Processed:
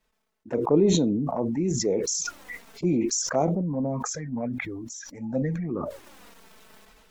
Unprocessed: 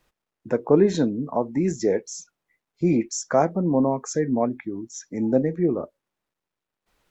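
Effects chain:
0:03.61–0:05.70: parametric band 360 Hz −14.5 dB 0.5 octaves
flanger swept by the level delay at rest 4.6 ms, full sweep at −18 dBFS
level that may fall only so fast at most 22 dB per second
level −3.5 dB

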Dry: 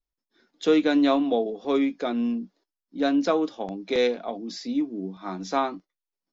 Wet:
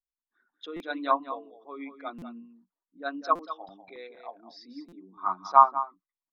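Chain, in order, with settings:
spectral envelope exaggerated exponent 2
low shelf with overshoot 710 Hz −13 dB, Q 3
low-pass that shuts in the quiet parts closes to 1,300 Hz, open at −27 dBFS
on a send: single-tap delay 195 ms −9 dB
on the sum: treble cut that deepens with the level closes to 1,500 Hz, closed at −24 dBFS
buffer that repeats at 0:00.76/0:02.18/0:03.35/0:04.88, samples 256, times 6
expander for the loud parts 1.5 to 1, over −42 dBFS
level +7.5 dB

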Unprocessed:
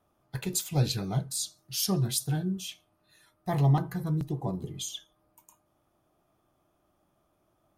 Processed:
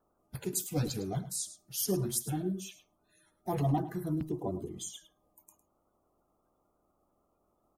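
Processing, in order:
spectral magnitudes quantised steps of 30 dB
octave-band graphic EQ 125/1,000/2,000/4,000 Hz −7/−4/−4/−10 dB
single-tap delay 106 ms −14.5 dB

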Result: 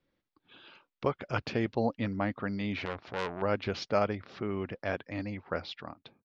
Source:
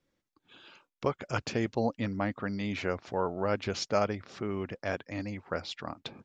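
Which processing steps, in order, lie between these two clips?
fade-out on the ending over 0.62 s
low-pass filter 4,600 Hz 24 dB per octave
0:02.85–0:03.42: saturating transformer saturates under 2,100 Hz

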